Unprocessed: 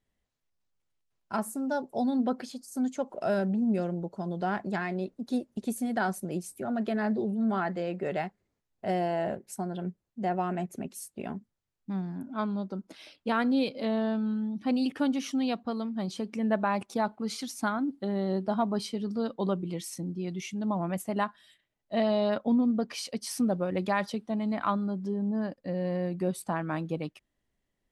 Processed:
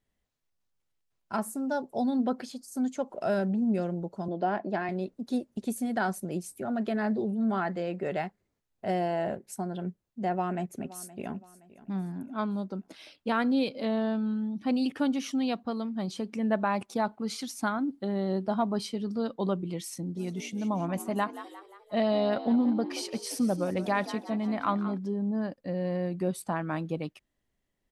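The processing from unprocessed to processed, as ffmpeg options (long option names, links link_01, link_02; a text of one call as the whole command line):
ffmpeg -i in.wav -filter_complex "[0:a]asettb=1/sr,asplit=3[link_01][link_02][link_03];[link_01]atrim=end=4.284[link_04];[link_02]atrim=start=4.28:end=4.89,asetpts=PTS-STARTPTS,afade=type=in:duration=0.004:curve=qsin,afade=type=out:start_time=0.606:duration=0.004:curve=qsin,highpass=200,equalizer=frequency=310:width_type=q:width=4:gain=7,equalizer=frequency=640:width_type=q:width=4:gain=7,equalizer=frequency=1300:width_type=q:width=4:gain=-4,equalizer=frequency=2100:width_type=q:width=4:gain=-4,equalizer=frequency=3700:width_type=q:width=4:gain=-6,lowpass=frequency=4900:width=0.5412,lowpass=frequency=4900:width=1.3066[link_05];[link_03]atrim=start=4.886[link_06];[link_04][link_05]acrossfade=duration=0.004:curve1=hsin:curve2=qsin[link_07];[link_07][link_06]acrossfade=duration=0.004:curve1=qsin:curve2=hsin,asplit=2[link_08][link_09];[link_09]afade=type=in:start_time=10.31:duration=0.01,afade=type=out:start_time=11.32:duration=0.01,aecho=0:1:520|1040|1560:0.125893|0.050357|0.0201428[link_10];[link_08][link_10]amix=inputs=2:normalize=0,asplit=3[link_11][link_12][link_13];[link_11]afade=type=out:start_time=20.15:duration=0.02[link_14];[link_12]asplit=6[link_15][link_16][link_17][link_18][link_19][link_20];[link_16]adelay=177,afreqshift=59,volume=-13.5dB[link_21];[link_17]adelay=354,afreqshift=118,volume=-19.2dB[link_22];[link_18]adelay=531,afreqshift=177,volume=-24.9dB[link_23];[link_19]adelay=708,afreqshift=236,volume=-30.5dB[link_24];[link_20]adelay=885,afreqshift=295,volume=-36.2dB[link_25];[link_15][link_21][link_22][link_23][link_24][link_25]amix=inputs=6:normalize=0,afade=type=in:start_time=20.15:duration=0.02,afade=type=out:start_time=24.97:duration=0.02[link_26];[link_13]afade=type=in:start_time=24.97:duration=0.02[link_27];[link_14][link_26][link_27]amix=inputs=3:normalize=0" out.wav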